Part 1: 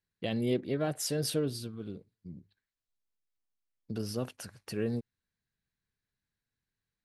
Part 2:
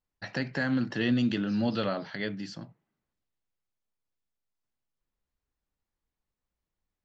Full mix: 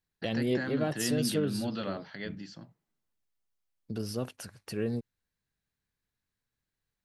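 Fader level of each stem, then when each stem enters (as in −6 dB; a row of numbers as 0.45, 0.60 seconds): +0.5, −6.0 decibels; 0.00, 0.00 seconds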